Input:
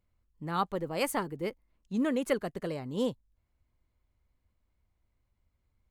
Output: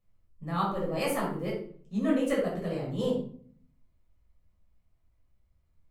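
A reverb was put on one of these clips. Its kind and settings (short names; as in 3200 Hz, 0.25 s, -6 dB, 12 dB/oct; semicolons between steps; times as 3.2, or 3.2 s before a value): shoebox room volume 630 m³, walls furnished, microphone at 6.1 m; gain -7.5 dB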